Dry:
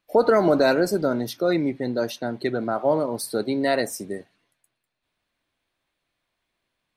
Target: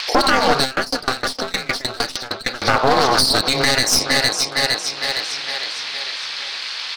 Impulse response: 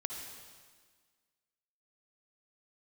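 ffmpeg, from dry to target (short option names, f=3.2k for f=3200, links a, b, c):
-filter_complex "[0:a]acompressor=mode=upward:threshold=-39dB:ratio=2.5,highpass=1.2k,aeval=exprs='val(0)*sin(2*PI*130*n/s)':c=same,lowpass=f=4.9k:t=q:w=4,aecho=1:1:458|916|1374|1832|2290|2748:0.2|0.11|0.0604|0.0332|0.0183|0.01,acompressor=threshold=-36dB:ratio=2.5,aeval=exprs='clip(val(0),-1,0.00531)':c=same,alimiter=level_in=31.5dB:limit=-1dB:release=50:level=0:latency=1,asplit=3[a][b][c];[a]afade=t=out:st=0.63:d=0.02[d];[b]aeval=exprs='val(0)*pow(10,-24*if(lt(mod(6.5*n/s,1),2*abs(6.5)/1000),1-mod(6.5*n/s,1)/(2*abs(6.5)/1000),(mod(6.5*n/s,1)-2*abs(6.5)/1000)/(1-2*abs(6.5)/1000))/20)':c=same,afade=t=in:st=0.63:d=0.02,afade=t=out:st=2.63:d=0.02[e];[c]afade=t=in:st=2.63:d=0.02[f];[d][e][f]amix=inputs=3:normalize=0,volume=-1dB"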